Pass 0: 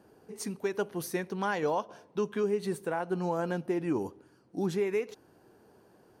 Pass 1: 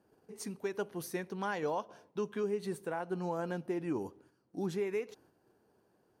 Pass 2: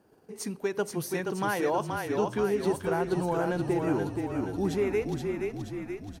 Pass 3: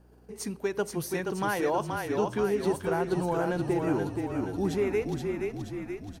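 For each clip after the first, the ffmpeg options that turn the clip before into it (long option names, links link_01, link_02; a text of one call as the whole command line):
ffmpeg -i in.wav -af "agate=range=-6dB:threshold=-58dB:ratio=16:detection=peak,volume=-5dB" out.wav
ffmpeg -i in.wav -filter_complex "[0:a]asplit=9[link_01][link_02][link_03][link_04][link_05][link_06][link_07][link_08][link_09];[link_02]adelay=476,afreqshift=-32,volume=-4dB[link_10];[link_03]adelay=952,afreqshift=-64,volume=-8.6dB[link_11];[link_04]adelay=1428,afreqshift=-96,volume=-13.2dB[link_12];[link_05]adelay=1904,afreqshift=-128,volume=-17.7dB[link_13];[link_06]adelay=2380,afreqshift=-160,volume=-22.3dB[link_14];[link_07]adelay=2856,afreqshift=-192,volume=-26.9dB[link_15];[link_08]adelay=3332,afreqshift=-224,volume=-31.5dB[link_16];[link_09]adelay=3808,afreqshift=-256,volume=-36.1dB[link_17];[link_01][link_10][link_11][link_12][link_13][link_14][link_15][link_16][link_17]amix=inputs=9:normalize=0,volume=6.5dB" out.wav
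ffmpeg -i in.wav -af "aeval=exprs='val(0)+0.00141*(sin(2*PI*60*n/s)+sin(2*PI*2*60*n/s)/2+sin(2*PI*3*60*n/s)/3+sin(2*PI*4*60*n/s)/4+sin(2*PI*5*60*n/s)/5)':channel_layout=same" out.wav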